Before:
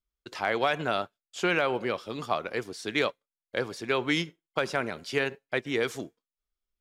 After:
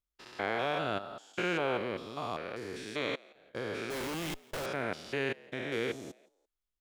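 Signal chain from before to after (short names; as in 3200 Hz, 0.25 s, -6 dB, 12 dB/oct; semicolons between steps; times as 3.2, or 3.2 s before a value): stepped spectrum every 0.2 s; 3.9–4.66 Schmitt trigger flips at -45 dBFS; frequency-shifting echo 0.17 s, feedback 37%, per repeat +86 Hz, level -23.5 dB; gain -2 dB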